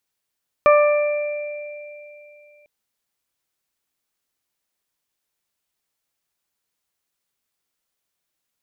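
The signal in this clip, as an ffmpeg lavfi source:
ffmpeg -f lavfi -i "aevalsrc='0.316*pow(10,-3*t/2.85)*sin(2*PI*591*t)+0.224*pow(10,-3*t/1.03)*sin(2*PI*1182*t)+0.0398*pow(10,-3*t/1.57)*sin(2*PI*1773*t)+0.0794*pow(10,-3*t/3.52)*sin(2*PI*2364*t)':duration=2:sample_rate=44100" out.wav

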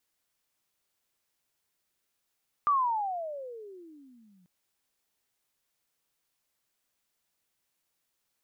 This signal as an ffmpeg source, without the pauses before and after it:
ffmpeg -f lavfi -i "aevalsrc='pow(10,(-20.5-39*t/1.79)/20)*sin(2*PI*1200*1.79/(-33.5*log(2)/12)*(exp(-33.5*log(2)/12*t/1.79)-1))':duration=1.79:sample_rate=44100" out.wav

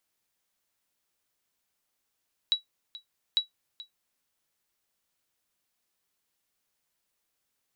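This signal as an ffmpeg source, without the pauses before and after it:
ffmpeg -f lavfi -i "aevalsrc='0.168*(sin(2*PI*3900*mod(t,0.85))*exp(-6.91*mod(t,0.85)/0.13)+0.119*sin(2*PI*3900*max(mod(t,0.85)-0.43,0))*exp(-6.91*max(mod(t,0.85)-0.43,0)/0.13))':duration=1.7:sample_rate=44100" out.wav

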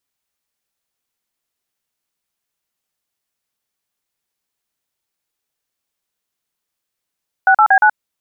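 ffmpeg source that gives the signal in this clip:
ffmpeg -f lavfi -i "aevalsrc='0.335*clip(min(mod(t,0.117),0.076-mod(t,0.117))/0.002,0,1)*(eq(floor(t/0.117),0)*(sin(2*PI*770*mod(t,0.117))+sin(2*PI*1477*mod(t,0.117)))+eq(floor(t/0.117),1)*(sin(2*PI*852*mod(t,0.117))+sin(2*PI*1336*mod(t,0.117)))+eq(floor(t/0.117),2)*(sin(2*PI*770*mod(t,0.117))+sin(2*PI*1633*mod(t,0.117)))+eq(floor(t/0.117),3)*(sin(2*PI*852*mod(t,0.117))+sin(2*PI*1477*mod(t,0.117))))':duration=0.468:sample_rate=44100" out.wav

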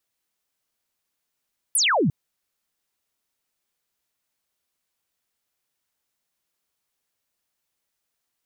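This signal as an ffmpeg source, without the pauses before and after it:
ffmpeg -f lavfi -i "aevalsrc='0.141*clip(t/0.002,0,1)*clip((0.35-t)/0.002,0,1)*sin(2*PI*12000*0.35/log(120/12000)*(exp(log(120/12000)*t/0.35)-1))':duration=0.35:sample_rate=44100" out.wav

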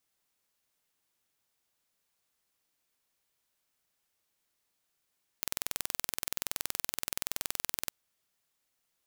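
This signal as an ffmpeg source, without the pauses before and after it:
ffmpeg -f lavfi -i "aevalsrc='0.596*eq(mod(n,2080),0)':duration=2.48:sample_rate=44100" out.wav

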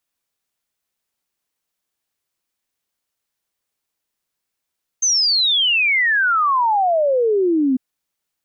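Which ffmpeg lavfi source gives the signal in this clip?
ffmpeg -f lavfi -i "aevalsrc='0.211*clip(min(t,2.75-t)/0.01,0,1)*sin(2*PI*6400*2.75/log(250/6400)*(exp(log(250/6400)*t/2.75)-1))':duration=2.75:sample_rate=44100" out.wav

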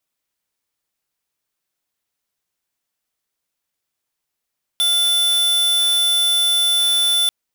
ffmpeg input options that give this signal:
ffmpeg -f lavfi -i "aevalsrc='0.15*(2*lt(mod(3500*t,1),0.5)-1)':duration=2.49:sample_rate=44100" out.wav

